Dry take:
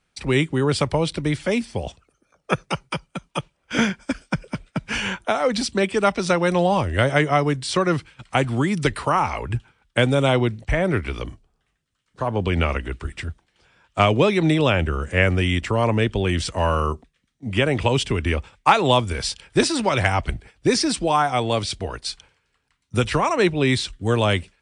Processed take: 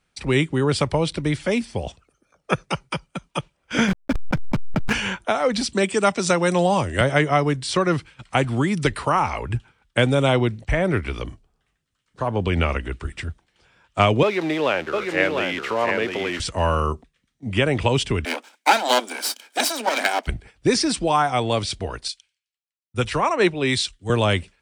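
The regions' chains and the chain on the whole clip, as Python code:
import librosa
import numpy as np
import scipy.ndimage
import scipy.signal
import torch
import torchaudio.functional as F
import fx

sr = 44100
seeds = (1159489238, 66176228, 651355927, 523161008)

y = fx.chain(x, sr, fx.lowpass(hz=6500.0, slope=24),
    fx.backlash(play_db=-25.0),
    fx.env_flatten(amount_pct=100), at=(3.88, 4.93))
y = fx.chain(y, sr, fx.highpass(hz=93.0, slope=24),
    fx.peak_eq(hz=7500.0, db=10.5, octaves=0.67), at=(5.73, 7.01))
y = fx.chain(y, sr, fx.crossing_spikes(level_db=-14.5),
    fx.bandpass_edges(low_hz=360.0, high_hz=2600.0),
    fx.echo_single(ms=702, db=-4.5), at=(14.23, 16.4))
y = fx.chain(y, sr, fx.lower_of_two(delay_ms=1.3),
    fx.steep_highpass(hz=230.0, slope=72),
    fx.high_shelf(hz=5000.0, db=5.5), at=(18.25, 20.27))
y = fx.chain(y, sr, fx.low_shelf(hz=230.0, db=-6.5),
    fx.band_widen(depth_pct=100), at=(22.08, 24.1))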